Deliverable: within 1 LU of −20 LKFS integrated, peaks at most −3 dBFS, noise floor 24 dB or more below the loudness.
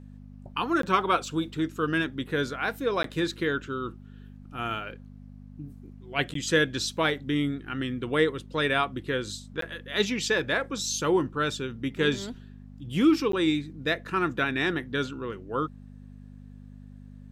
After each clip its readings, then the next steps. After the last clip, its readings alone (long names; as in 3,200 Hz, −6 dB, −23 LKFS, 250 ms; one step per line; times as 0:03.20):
number of dropouts 5; longest dropout 13 ms; mains hum 50 Hz; hum harmonics up to 250 Hz; level of the hum −44 dBFS; integrated loudness −28.0 LKFS; sample peak −9.5 dBFS; target loudness −20.0 LKFS
→ repair the gap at 0:00.82/0:03.03/0:06.34/0:09.61/0:13.32, 13 ms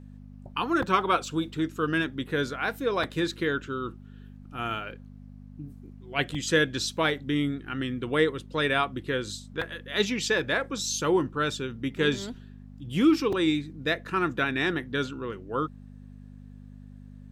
number of dropouts 0; mains hum 50 Hz; hum harmonics up to 250 Hz; level of the hum −43 dBFS
→ hum removal 50 Hz, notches 5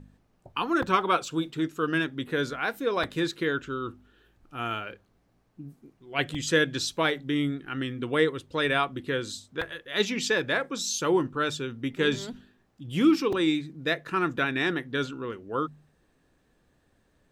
mains hum none found; integrated loudness −28.0 LKFS; sample peak −9.5 dBFS; target loudness −20.0 LKFS
→ level +8 dB
brickwall limiter −3 dBFS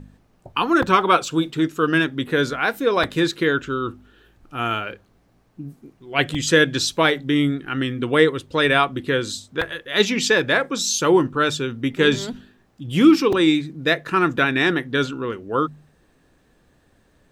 integrated loudness −20.0 LKFS; sample peak −3.0 dBFS; background noise floor −60 dBFS